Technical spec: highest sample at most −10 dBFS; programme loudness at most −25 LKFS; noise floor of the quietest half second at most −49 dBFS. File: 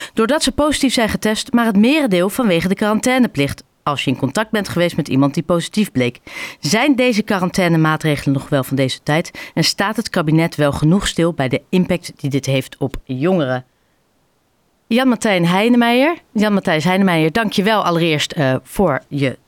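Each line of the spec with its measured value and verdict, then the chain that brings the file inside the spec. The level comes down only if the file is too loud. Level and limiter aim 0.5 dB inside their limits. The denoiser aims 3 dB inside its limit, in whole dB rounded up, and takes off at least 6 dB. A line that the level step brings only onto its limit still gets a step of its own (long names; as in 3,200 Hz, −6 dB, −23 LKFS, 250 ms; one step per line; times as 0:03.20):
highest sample −5.0 dBFS: out of spec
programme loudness −16.5 LKFS: out of spec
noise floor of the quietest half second −61 dBFS: in spec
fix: level −9 dB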